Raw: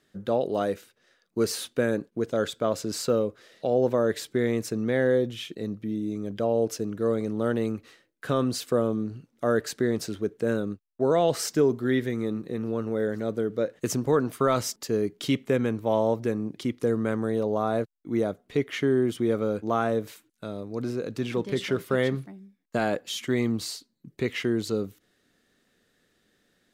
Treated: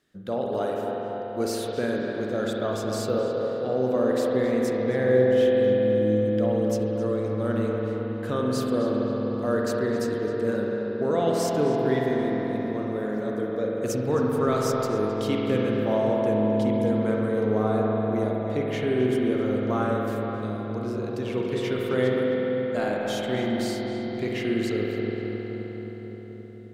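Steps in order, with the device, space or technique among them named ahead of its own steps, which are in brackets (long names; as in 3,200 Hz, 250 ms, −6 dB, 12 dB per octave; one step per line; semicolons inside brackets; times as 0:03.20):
dub delay into a spring reverb (feedback echo with a low-pass in the loop 263 ms, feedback 75%, low-pass 2,100 Hz, level −6.5 dB; spring reverb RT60 3.7 s, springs 47 ms, chirp 25 ms, DRR −1.5 dB)
level −4 dB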